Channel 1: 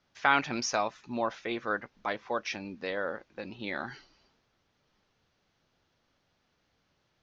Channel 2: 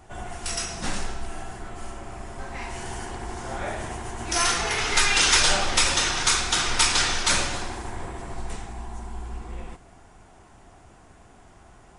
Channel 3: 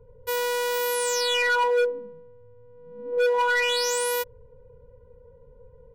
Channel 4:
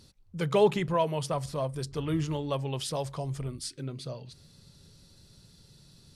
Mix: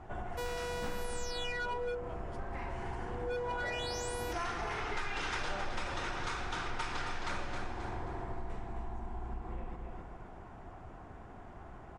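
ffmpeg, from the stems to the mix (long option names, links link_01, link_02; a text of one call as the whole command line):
ffmpeg -i stem1.wav -i stem2.wav -i stem3.wav -i stem4.wav -filter_complex "[1:a]lowpass=1400,aemphasis=mode=production:type=75kf,volume=1dB,asplit=2[link_01][link_02];[link_02]volume=-8dB[link_03];[2:a]lowpass=9400,adelay=100,volume=-4dB[link_04];[3:a]highshelf=frequency=6700:gain=-10.5,adelay=1100,volume=-17.5dB[link_05];[link_03]aecho=0:1:266|532|798|1064|1330:1|0.34|0.116|0.0393|0.0134[link_06];[link_01][link_04][link_05][link_06]amix=inputs=4:normalize=0,acompressor=threshold=-38dB:ratio=3" out.wav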